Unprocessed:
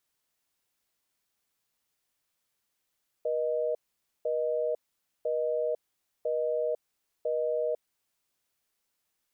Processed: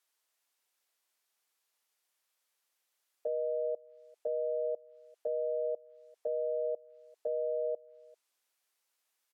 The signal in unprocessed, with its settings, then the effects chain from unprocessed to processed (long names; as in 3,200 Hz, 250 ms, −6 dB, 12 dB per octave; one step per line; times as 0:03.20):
call progress tone busy tone, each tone −29 dBFS 4.68 s
high-pass filter 490 Hz 12 dB per octave
treble cut that deepens with the level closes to 680 Hz, closed at −33 dBFS
single-tap delay 394 ms −23.5 dB